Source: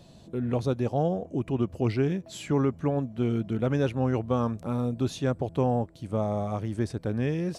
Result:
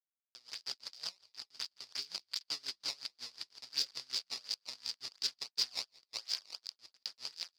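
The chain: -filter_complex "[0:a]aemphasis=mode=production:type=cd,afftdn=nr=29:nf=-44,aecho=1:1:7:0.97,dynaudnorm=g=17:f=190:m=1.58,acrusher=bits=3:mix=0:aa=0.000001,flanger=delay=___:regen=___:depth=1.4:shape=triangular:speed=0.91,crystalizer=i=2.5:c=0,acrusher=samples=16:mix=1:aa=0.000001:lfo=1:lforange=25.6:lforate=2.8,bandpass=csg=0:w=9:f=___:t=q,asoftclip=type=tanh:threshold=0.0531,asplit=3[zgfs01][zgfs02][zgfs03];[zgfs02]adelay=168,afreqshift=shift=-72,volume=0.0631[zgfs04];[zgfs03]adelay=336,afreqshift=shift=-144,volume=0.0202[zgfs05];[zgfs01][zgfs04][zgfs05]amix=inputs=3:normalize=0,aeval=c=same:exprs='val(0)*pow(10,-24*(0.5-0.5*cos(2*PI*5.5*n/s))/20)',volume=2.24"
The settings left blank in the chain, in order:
4.6, -66, 4.8k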